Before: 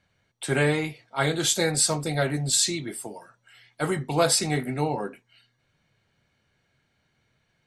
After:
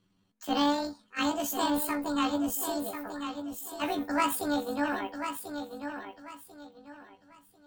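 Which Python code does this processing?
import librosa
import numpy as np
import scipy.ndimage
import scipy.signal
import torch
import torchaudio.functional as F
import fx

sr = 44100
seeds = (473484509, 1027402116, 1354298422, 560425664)

p1 = fx.pitch_heads(x, sr, semitones=11.5)
p2 = fx.bass_treble(p1, sr, bass_db=10, treble_db=-6)
p3 = p2 + fx.echo_feedback(p2, sr, ms=1042, feedback_pct=28, wet_db=-8.0, dry=0)
y = F.gain(torch.from_numpy(p3), -4.5).numpy()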